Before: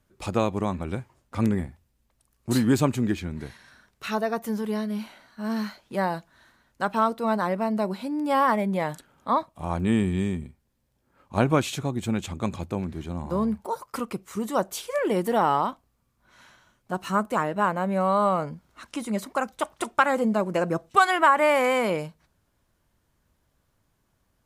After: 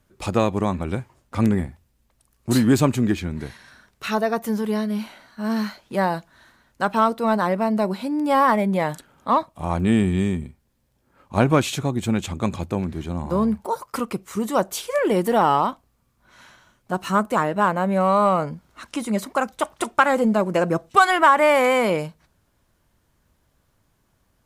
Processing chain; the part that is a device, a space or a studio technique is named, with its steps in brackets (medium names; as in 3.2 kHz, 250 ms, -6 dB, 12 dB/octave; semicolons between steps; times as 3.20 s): parallel distortion (in parallel at -11 dB: hard clipper -19 dBFS, distortion -11 dB); on the sum: trim +2.5 dB